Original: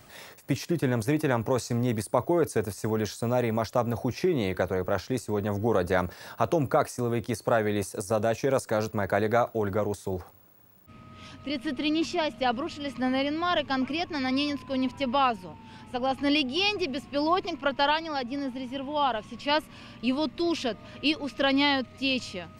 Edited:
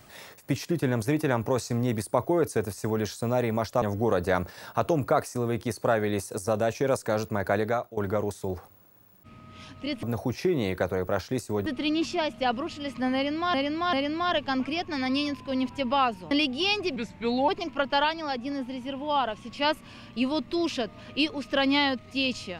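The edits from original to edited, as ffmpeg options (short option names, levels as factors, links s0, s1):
-filter_complex "[0:a]asplit=10[s0][s1][s2][s3][s4][s5][s6][s7][s8][s9];[s0]atrim=end=3.822[s10];[s1]atrim=start=5.448:end=9.6,asetpts=PTS-STARTPTS,afade=t=out:st=3.762:d=0.39:silence=0.16788[s11];[s2]atrim=start=9.6:end=11.662,asetpts=PTS-STARTPTS,afade=t=in:d=0.004:c=hsin:silence=0.16788[s12];[s3]atrim=start=3.818:end=5.452[s13];[s4]atrim=start=11.658:end=13.542[s14];[s5]atrim=start=13.148:end=13.542[s15];[s6]atrim=start=13.148:end=15.532[s16];[s7]atrim=start=16.268:end=16.924[s17];[s8]atrim=start=16.92:end=17.35,asetpts=PTS-STARTPTS,asetrate=36162,aresample=44100[s18];[s9]atrim=start=17.346[s19];[s11][s12]concat=n=2:v=0:a=1[s20];[s10][s20]acrossfade=d=0.004:c1=hsin:c2=hsin[s21];[s21][s13]acrossfade=d=0.004:c1=hsin:c2=hsin[s22];[s22][s14]acrossfade=d=0.004:c1=hsin:c2=hsin[s23];[s23][s15]acrossfade=d=0.004:c1=hsin:c2=hsin[s24];[s24][s16]acrossfade=d=0.004:c1=hsin:c2=hsin[s25];[s25][s17]acrossfade=d=0.004:c1=hsin:c2=hsin[s26];[s26][s18]acrossfade=d=0.004:c1=hsin:c2=hsin[s27];[s27][s19]acrossfade=d=0.004:c1=hsin:c2=hsin"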